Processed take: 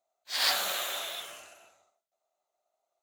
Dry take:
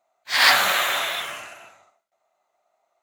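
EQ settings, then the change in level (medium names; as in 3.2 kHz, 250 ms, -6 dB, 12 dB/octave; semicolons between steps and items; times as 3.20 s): graphic EQ 125/250/1000/2000 Hz -11/-5/-7/-10 dB; -6.0 dB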